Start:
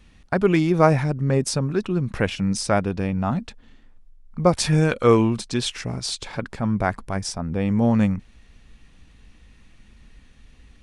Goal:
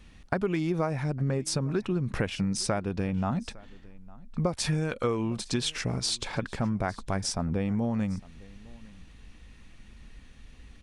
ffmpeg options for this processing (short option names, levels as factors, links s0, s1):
-filter_complex "[0:a]acompressor=threshold=0.0631:ratio=12,asplit=2[s0][s1];[s1]aecho=0:1:857:0.0708[s2];[s0][s2]amix=inputs=2:normalize=0"